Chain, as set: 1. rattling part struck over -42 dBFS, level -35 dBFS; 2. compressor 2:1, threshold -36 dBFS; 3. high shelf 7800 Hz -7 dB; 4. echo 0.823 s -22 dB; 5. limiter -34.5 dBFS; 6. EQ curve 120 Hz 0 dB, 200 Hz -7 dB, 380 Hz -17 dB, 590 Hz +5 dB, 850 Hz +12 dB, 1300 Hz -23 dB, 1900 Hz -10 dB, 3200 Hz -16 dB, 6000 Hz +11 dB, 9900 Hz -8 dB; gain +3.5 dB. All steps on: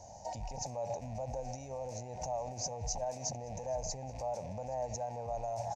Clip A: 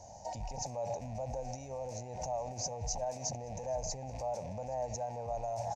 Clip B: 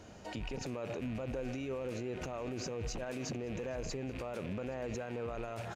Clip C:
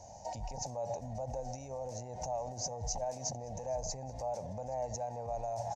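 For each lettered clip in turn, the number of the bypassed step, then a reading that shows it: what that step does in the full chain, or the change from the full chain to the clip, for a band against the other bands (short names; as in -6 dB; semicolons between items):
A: 2, mean gain reduction 4.5 dB; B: 6, 2 kHz band +14.0 dB; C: 1, 2 kHz band -2.5 dB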